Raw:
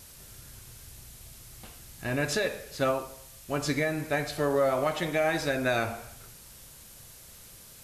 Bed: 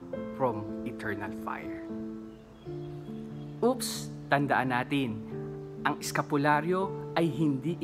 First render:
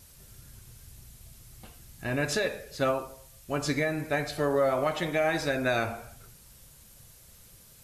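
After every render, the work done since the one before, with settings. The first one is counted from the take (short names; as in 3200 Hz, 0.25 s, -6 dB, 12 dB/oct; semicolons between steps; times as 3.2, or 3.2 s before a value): denoiser 6 dB, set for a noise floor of -50 dBFS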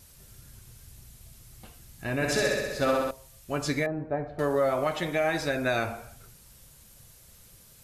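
2.15–3.11 flutter echo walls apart 11.1 m, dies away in 1.3 s; 3.86–4.39 Chebyshev low-pass 790 Hz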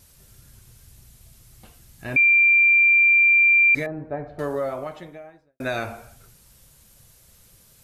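2.16–3.75 bleep 2370 Hz -12.5 dBFS; 4.28–5.6 studio fade out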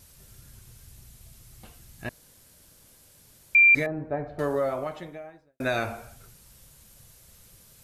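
2.09–3.55 room tone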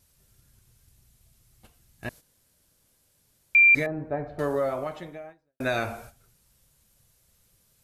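gate -45 dBFS, range -11 dB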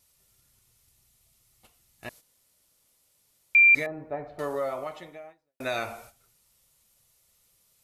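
low shelf 370 Hz -11 dB; notch 1600 Hz, Q 7.8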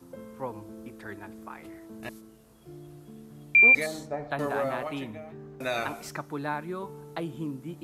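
add bed -7 dB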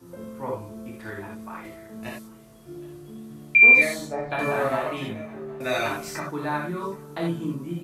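echo 0.767 s -22.5 dB; non-linear reverb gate 0.11 s flat, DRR -3.5 dB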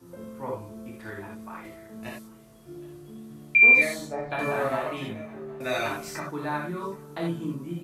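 gain -2.5 dB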